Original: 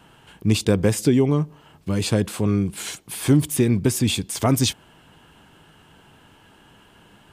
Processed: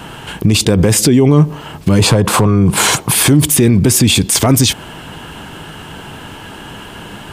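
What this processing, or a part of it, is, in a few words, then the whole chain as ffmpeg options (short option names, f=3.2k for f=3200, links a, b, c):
loud club master: -filter_complex "[0:a]asettb=1/sr,asplit=3[a][b][c];[a]atrim=end=1.994[d];[b]atrim=start=1.99:end=3.12,asetpts=PTS-STARTPTS,afade=t=in:d=0.004:c=qsin,afade=t=out:st=1.126:d=0.004:c=qsin,equalizer=f=125:t=o:w=1:g=9,equalizer=f=500:t=o:w=1:g=5,equalizer=f=1k:t=o:w=1:g=12[e];[c]atrim=start=3.116[f];[d][e]acrossfade=d=0.004:c1=hsin:c2=qsin[g];[g][f]acrossfade=d=0.004:c1=qsin:c2=hsin,acompressor=threshold=-20dB:ratio=3,asoftclip=type=hard:threshold=-12dB,alimiter=level_in=22dB:limit=-1dB:release=50:level=0:latency=1,volume=-1dB"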